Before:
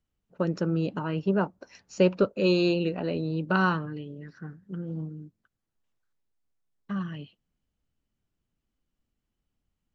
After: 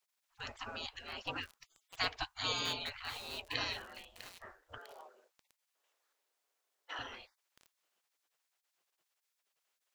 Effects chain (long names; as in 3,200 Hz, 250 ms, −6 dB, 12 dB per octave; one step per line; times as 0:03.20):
gate on every frequency bin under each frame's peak −30 dB weak
0:04.78–0:06.99: high-pass filter 440 Hz 24 dB per octave
feedback echo at a low word length 650 ms, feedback 55%, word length 8 bits, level −11 dB
level +9.5 dB